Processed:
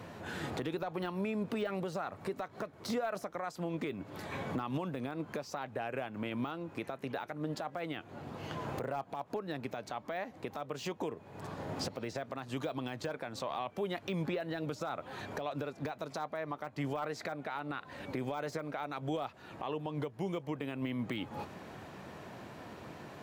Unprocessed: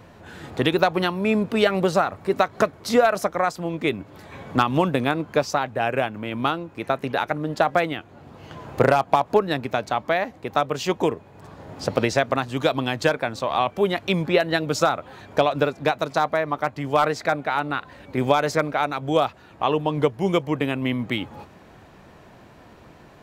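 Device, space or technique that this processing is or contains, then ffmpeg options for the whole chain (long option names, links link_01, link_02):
podcast mastering chain: -af "highpass=97,deesser=0.8,acompressor=threshold=-34dB:ratio=2.5,alimiter=level_in=3dB:limit=-24dB:level=0:latency=1:release=181,volume=-3dB,volume=1dB" -ar 48000 -c:a libmp3lame -b:a 112k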